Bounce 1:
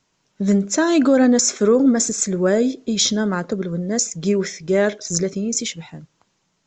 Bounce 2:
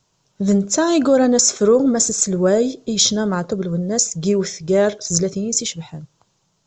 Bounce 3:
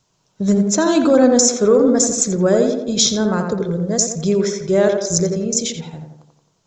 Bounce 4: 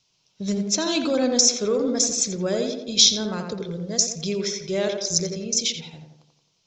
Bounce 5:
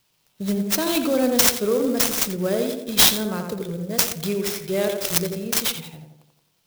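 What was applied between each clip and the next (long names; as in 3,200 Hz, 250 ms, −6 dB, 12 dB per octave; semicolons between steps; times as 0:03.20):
graphic EQ with 10 bands 125 Hz +5 dB, 250 Hz −7 dB, 2,000 Hz −9 dB; level +4 dB
tape delay 86 ms, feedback 59%, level −3.5 dB, low-pass 1,700 Hz
flat-topped bell 3,600 Hz +12.5 dB; level −10 dB
converter with an unsteady clock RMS 0.04 ms; level +1.5 dB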